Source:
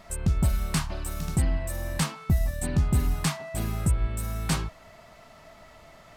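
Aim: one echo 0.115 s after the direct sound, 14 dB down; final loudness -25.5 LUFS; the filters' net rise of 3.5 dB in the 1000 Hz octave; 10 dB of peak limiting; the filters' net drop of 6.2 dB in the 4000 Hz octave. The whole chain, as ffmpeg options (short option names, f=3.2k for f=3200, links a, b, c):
-af "equalizer=f=1k:t=o:g=5,equalizer=f=4k:t=o:g=-8.5,alimiter=limit=-24dB:level=0:latency=1,aecho=1:1:115:0.2,volume=8.5dB"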